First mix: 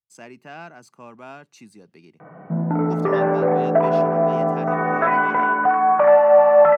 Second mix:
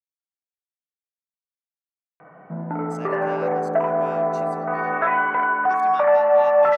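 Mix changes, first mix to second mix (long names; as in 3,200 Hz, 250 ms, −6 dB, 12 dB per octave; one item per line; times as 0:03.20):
speech: entry +2.80 s
master: add low-shelf EQ 470 Hz −9.5 dB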